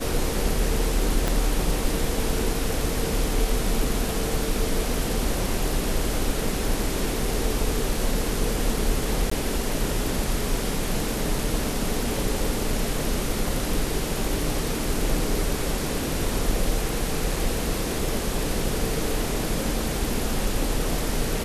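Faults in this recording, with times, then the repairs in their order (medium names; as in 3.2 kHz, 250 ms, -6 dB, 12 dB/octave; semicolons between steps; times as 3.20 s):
1.28 s: pop
9.30–9.31 s: dropout 14 ms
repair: de-click; interpolate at 9.30 s, 14 ms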